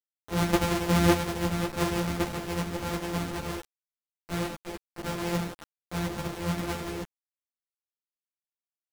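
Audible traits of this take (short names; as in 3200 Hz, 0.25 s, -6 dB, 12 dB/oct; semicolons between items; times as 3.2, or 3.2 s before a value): a buzz of ramps at a fixed pitch in blocks of 256 samples; tremolo saw up 0.88 Hz, depth 40%; a quantiser's noise floor 6-bit, dither none; a shimmering, thickened sound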